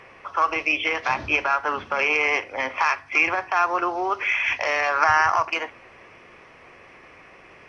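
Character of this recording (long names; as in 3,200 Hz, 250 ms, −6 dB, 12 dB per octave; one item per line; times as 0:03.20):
a quantiser's noise floor 12 bits, dither none
AAC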